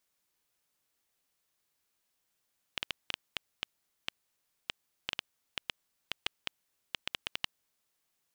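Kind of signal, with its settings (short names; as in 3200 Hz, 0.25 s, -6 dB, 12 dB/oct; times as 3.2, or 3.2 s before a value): random clicks 5.1/s -14 dBFS 4.92 s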